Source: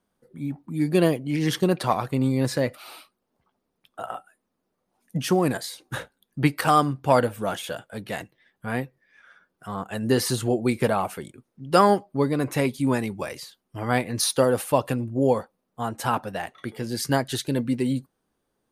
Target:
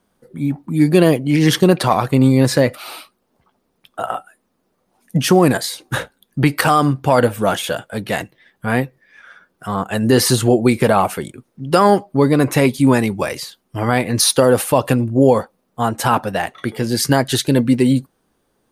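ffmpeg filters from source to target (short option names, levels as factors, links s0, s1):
-af "alimiter=level_in=3.76:limit=0.891:release=50:level=0:latency=1,volume=0.891"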